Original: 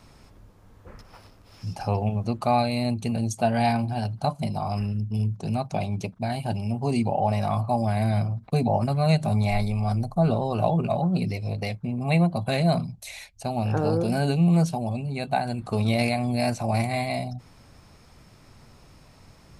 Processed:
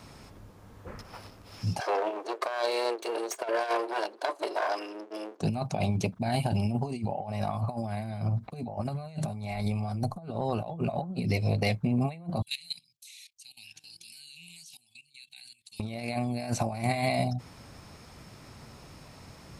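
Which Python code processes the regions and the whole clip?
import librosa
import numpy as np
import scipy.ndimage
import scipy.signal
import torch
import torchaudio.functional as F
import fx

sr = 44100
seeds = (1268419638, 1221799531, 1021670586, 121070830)

y = fx.chain(x, sr, fx.lower_of_two(delay_ms=1.8),
    fx.ellip_highpass(hz=360.0, order=4, stop_db=80),
    fx.high_shelf(hz=7900.0, db=-8.5), at=(1.8, 5.41))
y = fx.chain(y, sr, fx.cheby2_highpass(hz=1400.0, order=4, stop_db=40),
    fx.level_steps(step_db=18), at=(12.42, 15.8))
y = fx.highpass(y, sr, hz=77.0, slope=6)
y = fx.over_compress(y, sr, threshold_db=-29.0, ratio=-0.5)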